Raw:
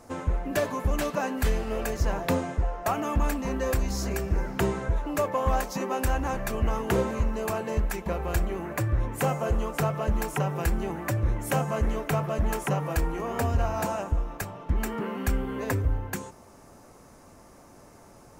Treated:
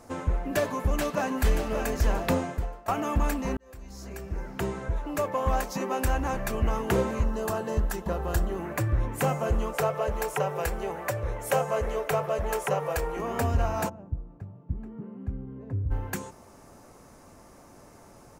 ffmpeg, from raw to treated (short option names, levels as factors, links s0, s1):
-filter_complex "[0:a]asplit=2[s0][s1];[s1]afade=t=in:st=0.59:d=0.01,afade=t=out:st=1.75:d=0.01,aecho=0:1:580|1160|1740|2320:0.446684|0.156339|0.0547187|0.0191516[s2];[s0][s2]amix=inputs=2:normalize=0,asettb=1/sr,asplit=3[s3][s4][s5];[s3]atrim=end=7.244[s6];[s4]atrim=start=7.24:end=8.59,asetpts=PTS-STARTPTS,afade=t=in:d=0.004:c=qsin,afade=t=out:st=1.346:d=0.004:c=qsin,equalizer=f=2300:t=o:w=0.23:g=-14.5[s7];[s5]atrim=start=8.586[s8];[s6][s7]acrossfade=d=0.004:c1=hsin:c2=qsin[s9];[s9][s8]acrossfade=d=0.004:c1=qsin:c2=hsin,asettb=1/sr,asplit=3[s10][s11][s12];[s10]atrim=end=9.734[s13];[s11]atrim=start=9.73:end=13.17,asetpts=PTS-STARTPTS,afade=t=in:d=0.004:c=qsin,afade=t=out:st=3.436:d=0.004:c=qsin,lowshelf=f=370:t=q:w=3:g=-6.5[s14];[s12]atrim=start=13.166[s15];[s13][s14]acrossfade=d=0.004:c1=hsin:c2=qsin[s16];[s16][s15]acrossfade=d=0.004:c1=qsin:c2=hsin,asplit=3[s17][s18][s19];[s17]afade=t=out:st=13.88:d=0.02[s20];[s18]bandpass=f=120:t=q:w=1.4,afade=t=in:st=13.88:d=0.02,afade=t=out:st=15.9:d=0.02[s21];[s19]afade=t=in:st=15.9:d=0.02[s22];[s20][s21][s22]amix=inputs=3:normalize=0,asplit=3[s23][s24][s25];[s23]atrim=end=2.88,asetpts=PTS-STARTPTS,afade=t=out:st=2.45:d=0.43:silence=0.112202[s26];[s24]atrim=start=2.88:end=3.57,asetpts=PTS-STARTPTS,afade=t=in:d=0.004:c=hsin:silence=0.112202,afade=t=out:st=0.686:d=0.004:c=hsin[s27];[s25]atrim=start=3.57,asetpts=PTS-STARTPTS,afade=t=in:d=2.75:c=qsin[s28];[s26][s27][s28]concat=n=3:v=0:a=1"